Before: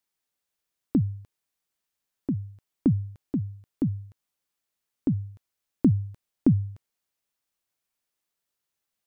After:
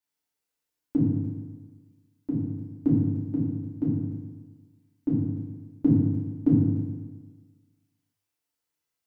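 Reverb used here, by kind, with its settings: FDN reverb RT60 1.4 s, low-frequency decay 1×, high-frequency decay 0.75×, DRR -9 dB; gain -10 dB

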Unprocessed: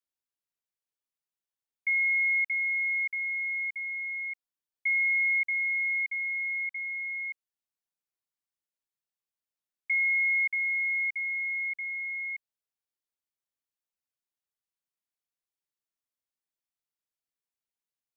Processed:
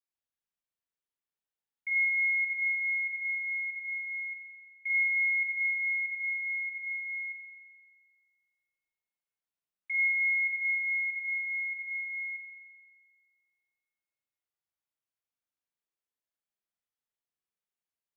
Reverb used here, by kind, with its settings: spring tank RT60 1.8 s, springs 38 ms, chirp 55 ms, DRR -4 dB; gain -7 dB

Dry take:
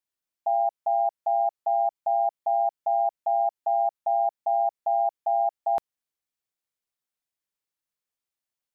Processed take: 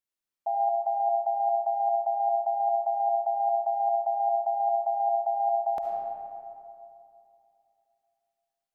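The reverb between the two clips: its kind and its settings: digital reverb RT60 2.7 s, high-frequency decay 0.45×, pre-delay 30 ms, DRR -0.5 dB; gain -4 dB

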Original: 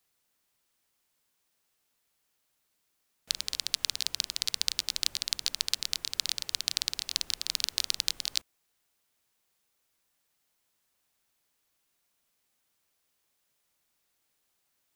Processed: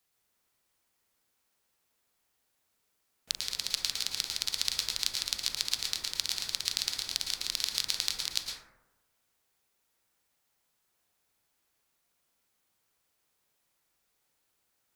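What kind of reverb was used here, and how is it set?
plate-style reverb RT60 0.99 s, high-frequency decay 0.3×, pre-delay 0.1 s, DRR 0 dB; gain -2 dB

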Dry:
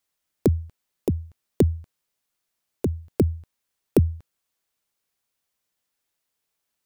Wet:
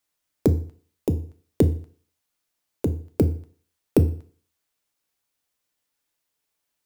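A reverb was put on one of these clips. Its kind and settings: FDN reverb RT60 0.47 s, low-frequency decay 0.95×, high-frequency decay 0.95×, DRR 8.5 dB

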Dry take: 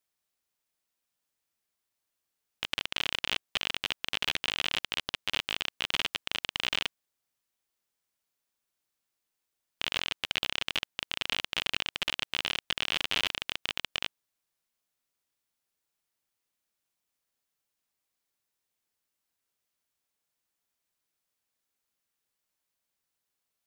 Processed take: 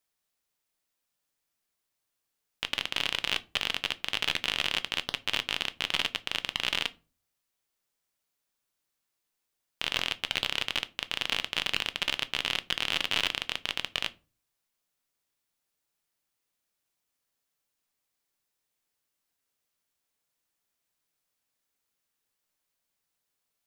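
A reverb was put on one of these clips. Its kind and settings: shoebox room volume 140 m³, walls furnished, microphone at 0.34 m; gain +1.5 dB

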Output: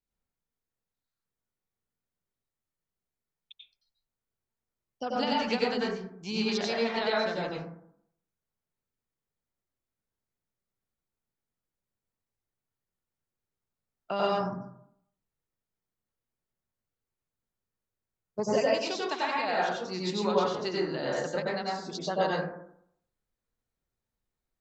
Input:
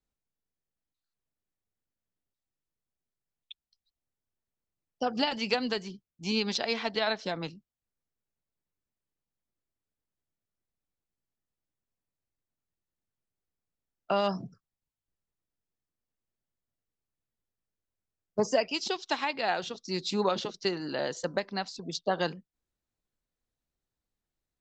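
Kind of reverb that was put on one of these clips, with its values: plate-style reverb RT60 0.69 s, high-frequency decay 0.3×, pre-delay 80 ms, DRR -5.5 dB; gain -5 dB

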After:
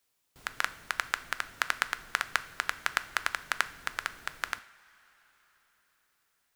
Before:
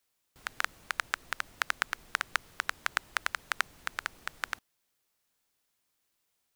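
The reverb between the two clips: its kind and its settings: two-slope reverb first 0.52 s, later 4.7 s, from -18 dB, DRR 12 dB; gain +1.5 dB

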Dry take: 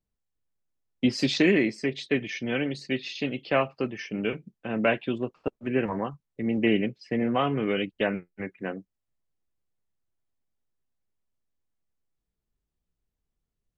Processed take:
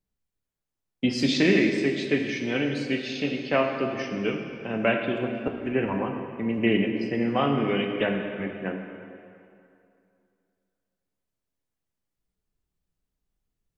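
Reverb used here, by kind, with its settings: plate-style reverb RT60 2.5 s, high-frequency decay 0.8×, DRR 3 dB

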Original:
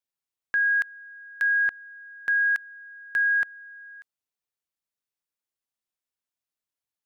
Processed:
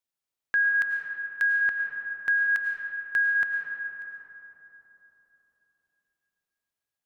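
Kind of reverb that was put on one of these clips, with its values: digital reverb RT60 4 s, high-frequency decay 0.35×, pre-delay 65 ms, DRR 1.5 dB

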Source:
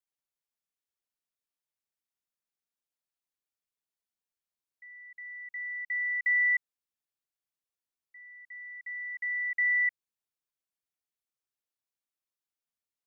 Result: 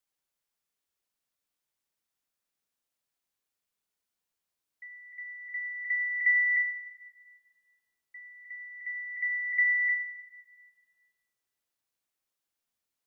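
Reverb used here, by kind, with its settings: plate-style reverb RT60 1.8 s, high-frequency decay 0.65×, DRR 9 dB; gain +5.5 dB

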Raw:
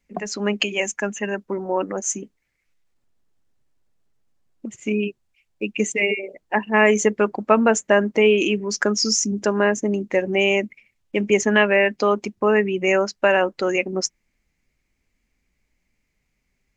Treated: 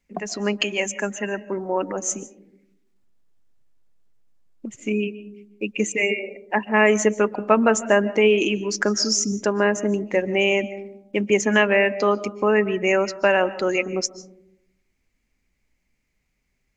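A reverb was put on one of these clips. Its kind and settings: digital reverb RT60 0.74 s, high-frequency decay 0.25×, pre-delay 0.105 s, DRR 16 dB; gain -1 dB

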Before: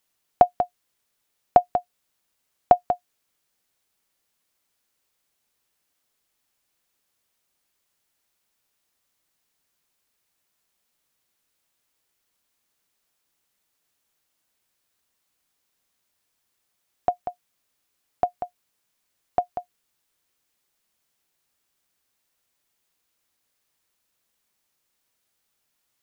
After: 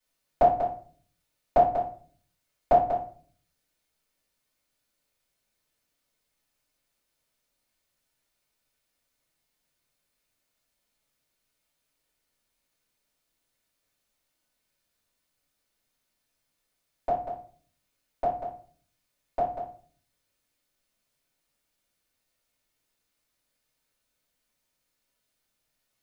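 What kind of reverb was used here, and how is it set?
shoebox room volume 39 m³, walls mixed, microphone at 2.5 m; gain -15 dB

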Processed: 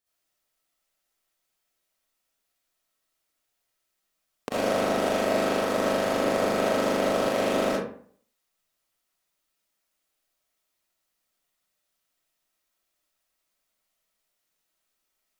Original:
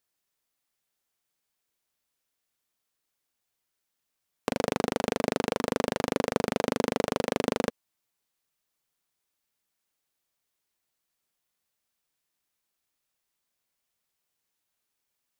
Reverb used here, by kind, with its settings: digital reverb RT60 0.55 s, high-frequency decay 0.6×, pre-delay 25 ms, DRR -9.5 dB; gain -5.5 dB

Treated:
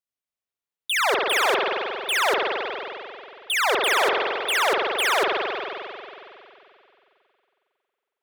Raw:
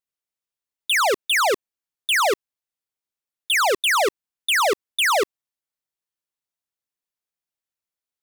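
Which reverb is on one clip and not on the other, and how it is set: spring tank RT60 2.7 s, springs 45 ms, chirp 25 ms, DRR -2 dB; gain -4.5 dB

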